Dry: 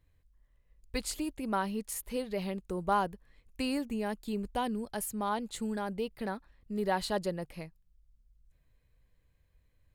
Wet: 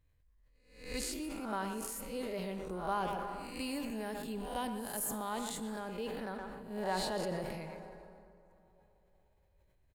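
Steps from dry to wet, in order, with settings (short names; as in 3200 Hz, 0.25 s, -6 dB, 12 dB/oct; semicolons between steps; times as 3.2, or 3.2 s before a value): spectral swells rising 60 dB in 0.55 s; 3.1–5.8 high shelf 7200 Hz +7 dB; speakerphone echo 0.12 s, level -9 dB; plate-style reverb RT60 3.9 s, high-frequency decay 0.5×, DRR 12 dB; sustainer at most 24 dB/s; gain -7.5 dB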